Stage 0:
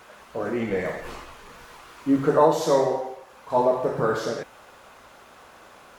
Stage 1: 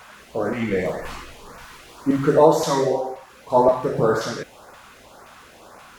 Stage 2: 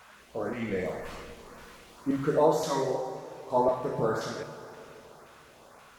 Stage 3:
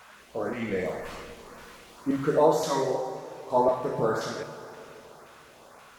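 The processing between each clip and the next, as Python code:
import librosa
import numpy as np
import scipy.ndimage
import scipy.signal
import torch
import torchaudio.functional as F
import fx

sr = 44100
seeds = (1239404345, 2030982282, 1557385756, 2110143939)

y1 = fx.filter_lfo_notch(x, sr, shape='saw_up', hz=1.9, low_hz=300.0, high_hz=3600.0, q=0.93)
y1 = F.gain(torch.from_numpy(y1), 5.5).numpy()
y2 = fx.rev_plate(y1, sr, seeds[0], rt60_s=3.4, hf_ratio=0.75, predelay_ms=0, drr_db=10.0)
y2 = F.gain(torch.from_numpy(y2), -9.0).numpy()
y3 = fx.low_shelf(y2, sr, hz=160.0, db=-4.0)
y3 = F.gain(torch.from_numpy(y3), 2.5).numpy()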